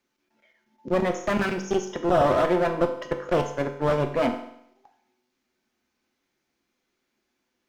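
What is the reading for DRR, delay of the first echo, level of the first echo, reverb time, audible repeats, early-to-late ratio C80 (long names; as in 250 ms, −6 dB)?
4.5 dB, no echo audible, no echo audible, 0.75 s, no echo audible, 12.0 dB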